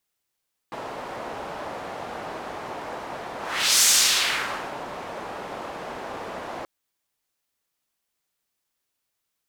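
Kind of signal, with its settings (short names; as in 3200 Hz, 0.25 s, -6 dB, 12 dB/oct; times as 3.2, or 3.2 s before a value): whoosh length 5.93 s, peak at 3.1, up 0.46 s, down 1.02 s, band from 740 Hz, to 6900 Hz, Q 1.2, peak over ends 18 dB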